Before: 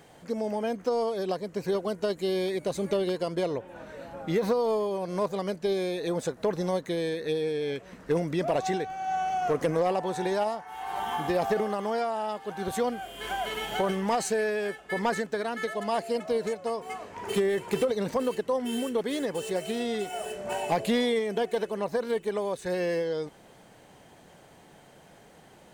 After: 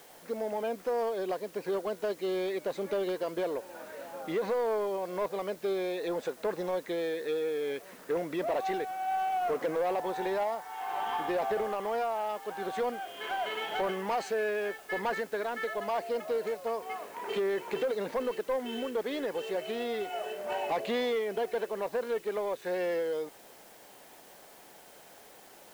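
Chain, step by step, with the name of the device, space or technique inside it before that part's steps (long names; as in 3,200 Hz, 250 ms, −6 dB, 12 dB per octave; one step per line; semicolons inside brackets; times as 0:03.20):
tape answering machine (band-pass filter 340–3,300 Hz; soft clipping −24 dBFS, distortion −15 dB; tape wow and flutter 20 cents; white noise bed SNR 24 dB)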